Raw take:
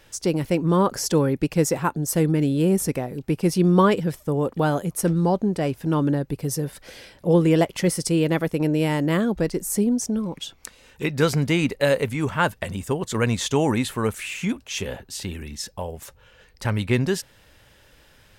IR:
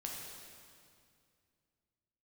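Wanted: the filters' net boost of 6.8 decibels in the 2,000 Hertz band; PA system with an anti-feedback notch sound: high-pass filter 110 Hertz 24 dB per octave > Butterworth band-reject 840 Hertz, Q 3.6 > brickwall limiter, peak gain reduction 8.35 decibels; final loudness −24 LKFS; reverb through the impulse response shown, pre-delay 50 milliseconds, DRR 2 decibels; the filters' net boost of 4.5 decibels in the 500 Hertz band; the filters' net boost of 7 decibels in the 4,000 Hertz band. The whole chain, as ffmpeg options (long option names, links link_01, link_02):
-filter_complex "[0:a]equalizer=frequency=500:width_type=o:gain=5,equalizer=frequency=2000:width_type=o:gain=6.5,equalizer=frequency=4000:width_type=o:gain=7,asplit=2[link_01][link_02];[1:a]atrim=start_sample=2205,adelay=50[link_03];[link_02][link_03]afir=irnorm=-1:irlink=0,volume=-1.5dB[link_04];[link_01][link_04]amix=inputs=2:normalize=0,highpass=frequency=110:width=0.5412,highpass=frequency=110:width=1.3066,asuperstop=centerf=840:order=8:qfactor=3.6,volume=-4.5dB,alimiter=limit=-13dB:level=0:latency=1"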